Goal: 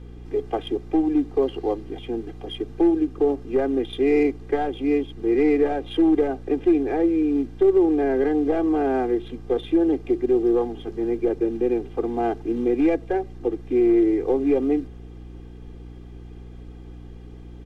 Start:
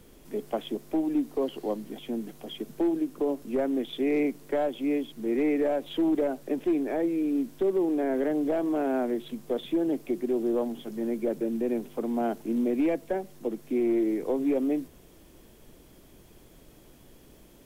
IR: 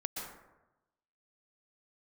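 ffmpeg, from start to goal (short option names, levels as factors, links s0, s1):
-af "adynamicsmooth=sensitivity=6.5:basefreq=3500,aecho=1:1:2.5:0.96,aeval=exprs='val(0)+0.00794*(sin(2*PI*60*n/s)+sin(2*PI*2*60*n/s)/2+sin(2*PI*3*60*n/s)/3+sin(2*PI*4*60*n/s)/4+sin(2*PI*5*60*n/s)/5)':c=same,volume=1.41"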